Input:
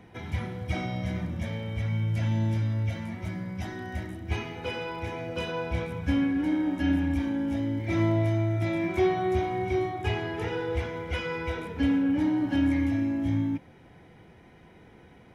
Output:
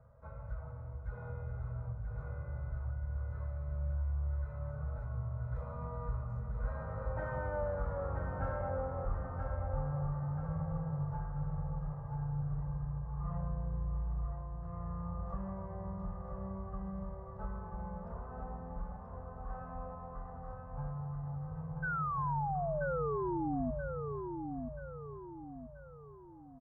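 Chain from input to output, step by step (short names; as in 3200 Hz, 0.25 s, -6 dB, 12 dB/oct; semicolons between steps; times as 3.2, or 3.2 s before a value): Doppler pass-by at 4.54, 39 m/s, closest 18 m; EQ curve 220 Hz 0 dB, 570 Hz -24 dB, 960 Hz +3 dB, 2300 Hz -5 dB, 5500 Hz -29 dB; compressor 3:1, threshold -53 dBFS, peak gain reduction 17 dB; painted sound fall, 12.59–13.68, 410–2700 Hz -50 dBFS; on a send: feedback echo 0.566 s, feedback 44%, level -5.5 dB; on the sum: speed mistake 78 rpm record played at 45 rpm; gain +14 dB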